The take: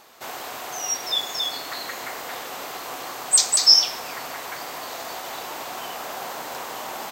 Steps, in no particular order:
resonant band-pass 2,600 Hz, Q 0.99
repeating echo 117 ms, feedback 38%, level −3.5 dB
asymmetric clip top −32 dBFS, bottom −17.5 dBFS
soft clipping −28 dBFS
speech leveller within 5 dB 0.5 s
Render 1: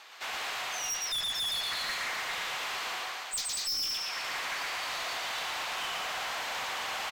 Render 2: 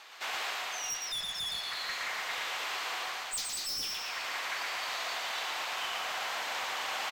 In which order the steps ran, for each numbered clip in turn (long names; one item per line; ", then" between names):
repeating echo, then speech leveller, then resonant band-pass, then soft clipping, then asymmetric clip
resonant band-pass, then soft clipping, then repeating echo, then asymmetric clip, then speech leveller